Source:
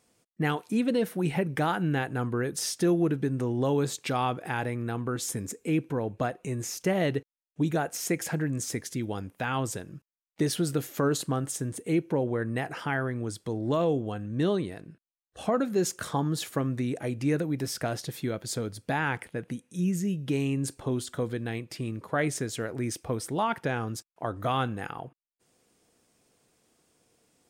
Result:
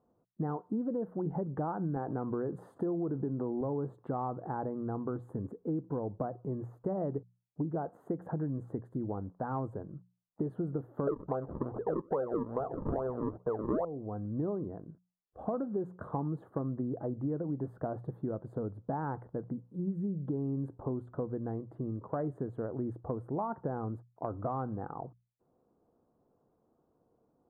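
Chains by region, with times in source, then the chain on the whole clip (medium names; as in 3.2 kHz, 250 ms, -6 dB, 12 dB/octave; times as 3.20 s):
1.96–3.61 s: high-pass 170 Hz 6 dB/octave + level flattener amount 50%
11.07–13.85 s: high-order bell 550 Hz +14.5 dB 1.1 oct + decimation with a swept rate 42× 2.4 Hz
whole clip: inverse Chebyshev low-pass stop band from 2.2 kHz, stop band 40 dB; hum notches 60/120/180 Hz; compression, threshold -29 dBFS; trim -1.5 dB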